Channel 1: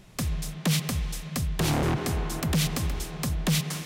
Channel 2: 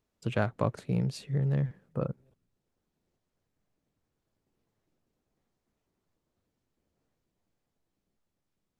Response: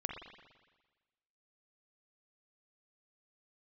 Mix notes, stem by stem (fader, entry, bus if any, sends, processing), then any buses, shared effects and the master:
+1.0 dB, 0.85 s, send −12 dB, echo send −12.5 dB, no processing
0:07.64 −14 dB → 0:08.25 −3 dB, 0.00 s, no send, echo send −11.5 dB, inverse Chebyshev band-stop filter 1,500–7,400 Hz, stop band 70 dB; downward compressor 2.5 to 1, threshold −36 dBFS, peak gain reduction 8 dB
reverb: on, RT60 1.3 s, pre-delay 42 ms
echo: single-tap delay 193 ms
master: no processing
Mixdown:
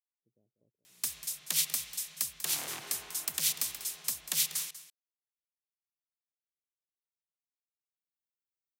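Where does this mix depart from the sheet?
stem 2: missing downward compressor 2.5 to 1, threshold −36 dBFS, peak gain reduction 8 dB
master: extra first difference

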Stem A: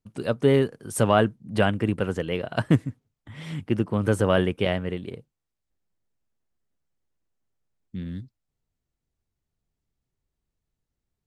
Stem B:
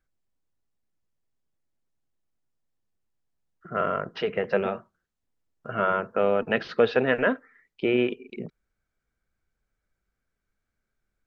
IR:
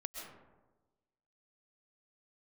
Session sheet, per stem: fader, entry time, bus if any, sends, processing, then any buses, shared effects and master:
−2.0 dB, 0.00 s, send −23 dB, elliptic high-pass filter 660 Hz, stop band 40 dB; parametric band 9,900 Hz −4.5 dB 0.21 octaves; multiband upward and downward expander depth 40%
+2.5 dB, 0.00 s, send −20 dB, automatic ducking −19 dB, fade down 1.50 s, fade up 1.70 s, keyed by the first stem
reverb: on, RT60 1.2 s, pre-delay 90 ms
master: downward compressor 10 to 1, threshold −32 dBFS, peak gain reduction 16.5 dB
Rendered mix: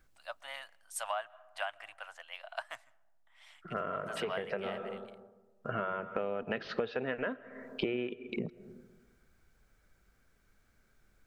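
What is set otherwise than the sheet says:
stem A −2.0 dB → −9.0 dB
stem B +2.5 dB → +11.5 dB

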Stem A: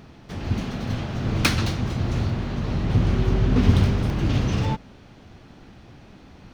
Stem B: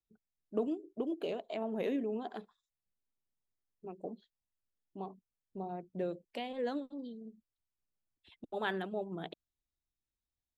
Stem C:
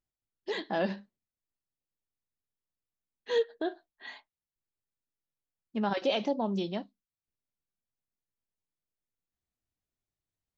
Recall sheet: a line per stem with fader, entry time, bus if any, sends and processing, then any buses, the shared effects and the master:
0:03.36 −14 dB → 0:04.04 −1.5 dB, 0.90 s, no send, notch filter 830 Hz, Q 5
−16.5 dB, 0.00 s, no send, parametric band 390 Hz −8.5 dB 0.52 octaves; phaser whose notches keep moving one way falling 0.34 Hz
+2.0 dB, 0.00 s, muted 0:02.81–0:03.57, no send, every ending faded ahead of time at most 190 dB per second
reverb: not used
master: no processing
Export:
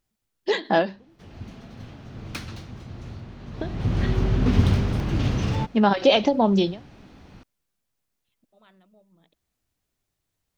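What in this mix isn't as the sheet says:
stem A: missing notch filter 830 Hz, Q 5
stem C +2.0 dB → +12.0 dB

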